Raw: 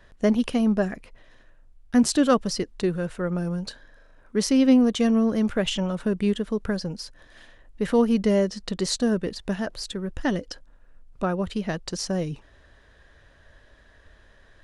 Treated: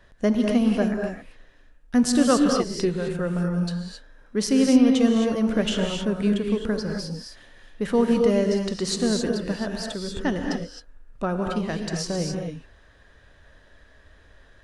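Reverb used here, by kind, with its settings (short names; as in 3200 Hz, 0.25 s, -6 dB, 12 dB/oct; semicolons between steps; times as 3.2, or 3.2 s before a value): non-linear reverb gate 0.29 s rising, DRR 2 dB; gain -1 dB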